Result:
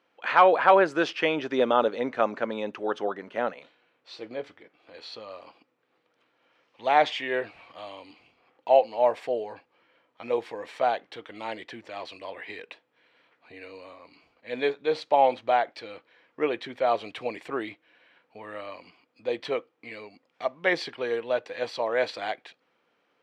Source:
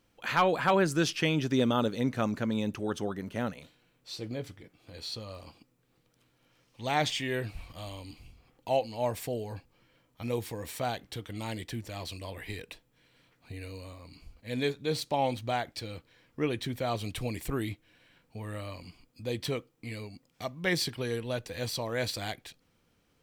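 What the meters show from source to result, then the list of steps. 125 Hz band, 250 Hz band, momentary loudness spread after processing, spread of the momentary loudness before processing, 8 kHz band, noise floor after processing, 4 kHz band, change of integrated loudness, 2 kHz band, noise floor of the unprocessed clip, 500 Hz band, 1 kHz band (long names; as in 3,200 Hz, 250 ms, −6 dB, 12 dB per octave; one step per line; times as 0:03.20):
−15.0 dB, −2.5 dB, 20 LU, 19 LU, below −10 dB, −72 dBFS, −1.0 dB, +6.0 dB, +5.0 dB, −71 dBFS, +7.5 dB, +8.5 dB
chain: band-pass filter 460–2,600 Hz
dynamic equaliser 610 Hz, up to +5 dB, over −41 dBFS, Q 0.81
level +5.5 dB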